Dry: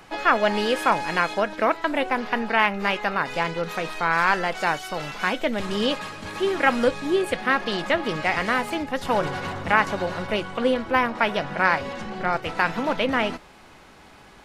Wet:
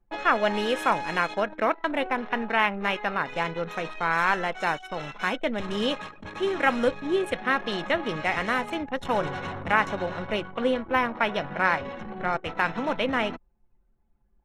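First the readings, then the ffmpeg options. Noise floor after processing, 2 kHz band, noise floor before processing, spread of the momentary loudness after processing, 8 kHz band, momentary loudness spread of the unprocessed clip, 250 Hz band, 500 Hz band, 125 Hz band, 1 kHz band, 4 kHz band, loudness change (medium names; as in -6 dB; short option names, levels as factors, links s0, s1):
-65 dBFS, -3.0 dB, -49 dBFS, 7 LU, -6.5 dB, 7 LU, -3.0 dB, -3.0 dB, -3.0 dB, -3.0 dB, -3.5 dB, -3.0 dB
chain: -af "anlmdn=10,asuperstop=centerf=4700:order=8:qfactor=7.1,volume=0.708"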